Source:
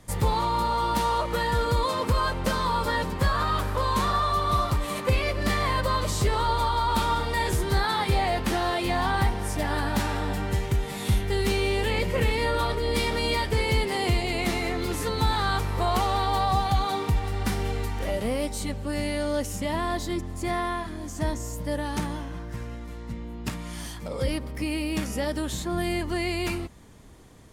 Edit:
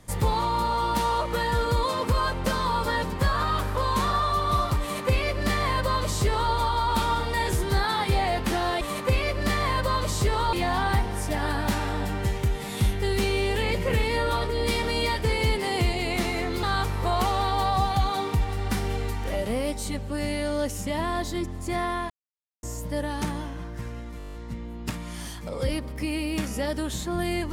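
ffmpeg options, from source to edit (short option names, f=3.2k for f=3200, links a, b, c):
-filter_complex "[0:a]asplit=14[a][b][c][d][e][f][g][h][i][j][k][l][m][n];[a]atrim=end=8.812[o];[b]atrim=start=4.808:end=6.532[p];[c]atrim=start=8.808:end=14.912[q];[d]atrim=start=15.378:end=20.85,asetpts=PTS-STARTPTS,afade=t=out:st=5.468:d=0.004:c=hsin[r];[e]atrim=start=20.85:end=21.38,asetpts=PTS-STARTPTS,volume=0[s];[f]atrim=start=21.38:end=22.952,asetpts=PTS-STARTPTS,afade=t=in:d=0.004:c=hsin[t];[g]atrim=start=22.928:end=22.952[u];[h]atrim=start=22.928:end=22.952[v];[i]atrim=start=22.928:end=22.952[w];[j]atrim=start=22.928:end=22.952[x];[k]atrim=start=22.928:end=22.952[y];[l]atrim=start=22.928:end=22.952[z];[m]atrim=start=22.928:end=22.952[aa];[n]atrim=start=22.928[ab];[o][p]acrossfade=d=0.004:c1=hsin:c2=hsin[ac];[ac][q]acrossfade=d=0.004:c1=hsin:c2=hsin[ad];[r][s][t]concat=n=3:v=0:a=1[ae];[ad][ae]acrossfade=d=0.004:c1=hsin:c2=hsin[af];[af][u]acrossfade=d=0.004:c1=hsin:c2=hsin[ag];[ag][v]acrossfade=d=0.004:c1=hsin:c2=hsin[ah];[ah][w]acrossfade=d=0.004:c1=hsin:c2=hsin[ai];[ai][x]acrossfade=d=0.004:c1=hsin:c2=hsin[aj];[aj][y]acrossfade=d=0.004:c1=hsin:c2=hsin[ak];[ak][z]acrossfade=d=0.004:c1=hsin:c2=hsin[al];[al][aa]acrossfade=d=0.004:c1=hsin:c2=hsin[am];[am][ab]acrossfade=d=0.004:c1=hsin:c2=hsin"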